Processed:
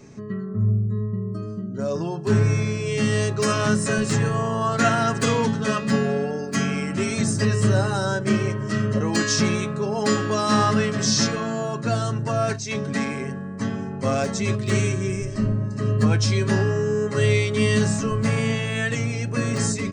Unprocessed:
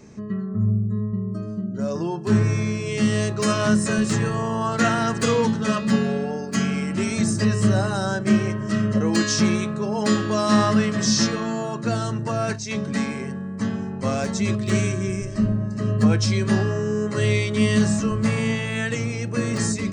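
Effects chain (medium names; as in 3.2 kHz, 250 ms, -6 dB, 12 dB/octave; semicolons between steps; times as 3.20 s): comb 7.3 ms, depth 41%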